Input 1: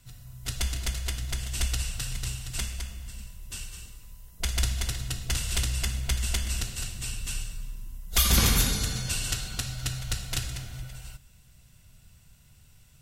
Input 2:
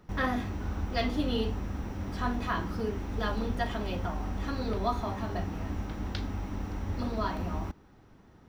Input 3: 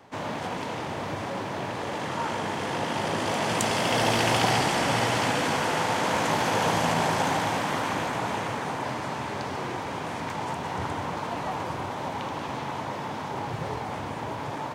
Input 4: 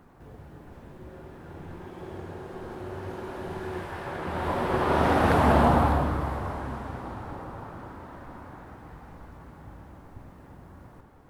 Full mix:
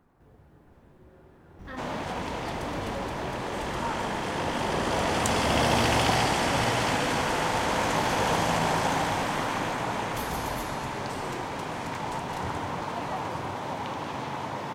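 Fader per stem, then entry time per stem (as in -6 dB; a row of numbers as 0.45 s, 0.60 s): -18.0 dB, -11.5 dB, -1.0 dB, -9.5 dB; 2.00 s, 1.50 s, 1.65 s, 0.00 s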